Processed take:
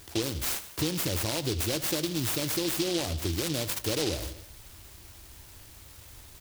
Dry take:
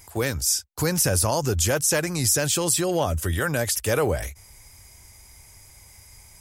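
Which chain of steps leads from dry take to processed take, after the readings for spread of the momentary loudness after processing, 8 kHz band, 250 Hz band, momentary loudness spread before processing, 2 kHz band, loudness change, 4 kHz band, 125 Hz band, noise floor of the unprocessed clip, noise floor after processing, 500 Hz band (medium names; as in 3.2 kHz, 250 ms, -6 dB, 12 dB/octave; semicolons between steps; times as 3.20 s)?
20 LU, -11.0 dB, -3.0 dB, 5 LU, -9.0 dB, -7.0 dB, -2.0 dB, -7.5 dB, -50 dBFS, -50 dBFS, -8.5 dB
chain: peaking EQ 320 Hz +11.5 dB 0.33 oct; on a send: feedback delay 78 ms, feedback 48%, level -16.5 dB; on the sum: compression 3:1, threshold -29 dBFS, peak gain reduction 11 dB; delay time shaken by noise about 3.9 kHz, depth 0.21 ms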